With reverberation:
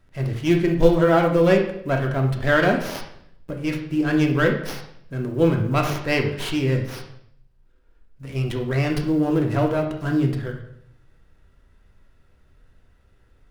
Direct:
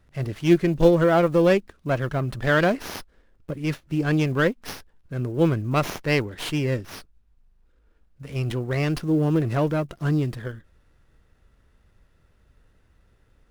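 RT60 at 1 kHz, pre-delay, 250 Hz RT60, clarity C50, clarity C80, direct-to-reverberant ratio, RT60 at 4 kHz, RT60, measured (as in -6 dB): 0.65 s, 3 ms, 0.80 s, 7.0 dB, 10.5 dB, 2.0 dB, 0.60 s, 0.70 s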